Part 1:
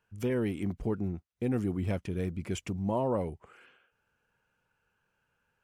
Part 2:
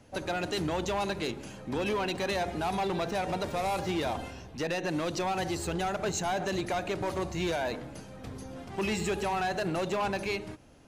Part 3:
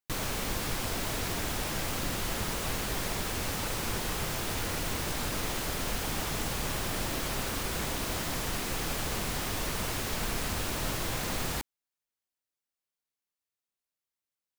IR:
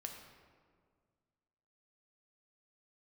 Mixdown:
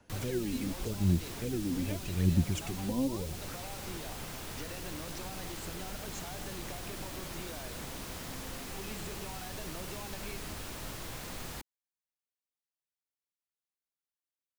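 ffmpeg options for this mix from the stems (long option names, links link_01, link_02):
-filter_complex "[0:a]aphaser=in_gain=1:out_gain=1:delay=4:decay=0.79:speed=0.85:type=sinusoidal,volume=-2dB[link_01];[1:a]acompressor=threshold=-35dB:ratio=6,volume=-7dB[link_02];[2:a]volume=-9dB[link_03];[link_01][link_02][link_03]amix=inputs=3:normalize=0,acrossover=split=310|3000[link_04][link_05][link_06];[link_05]acompressor=threshold=-43dB:ratio=6[link_07];[link_04][link_07][link_06]amix=inputs=3:normalize=0"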